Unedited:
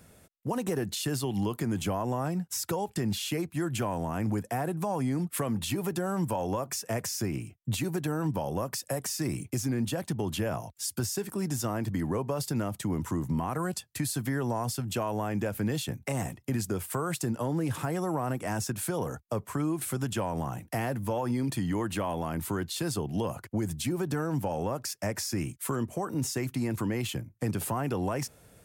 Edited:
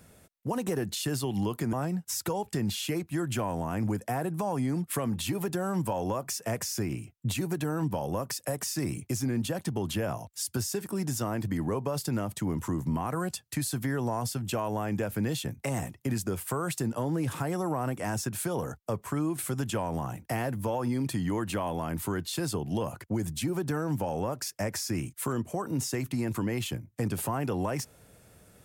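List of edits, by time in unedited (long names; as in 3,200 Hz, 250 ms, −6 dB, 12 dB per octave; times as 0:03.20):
0:01.73–0:02.16: remove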